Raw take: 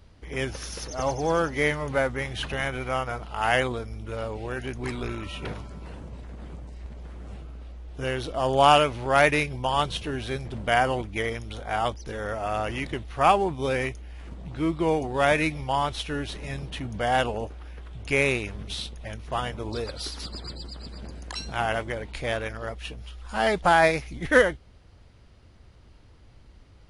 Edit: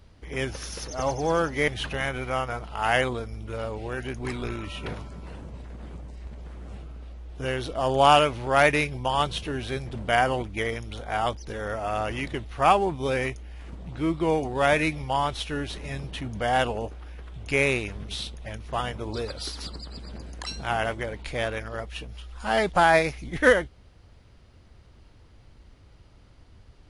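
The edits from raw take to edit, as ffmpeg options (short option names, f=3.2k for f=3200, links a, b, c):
-filter_complex "[0:a]asplit=3[a][b][c];[a]atrim=end=1.682[d];[b]atrim=start=2.268:end=20.352[e];[c]atrim=start=20.648[f];[d][e]acrossfade=d=0.004:c1=hsin:c2=hsin[g];[g][f]acrossfade=d=0.004:c1=hsin:c2=hsin"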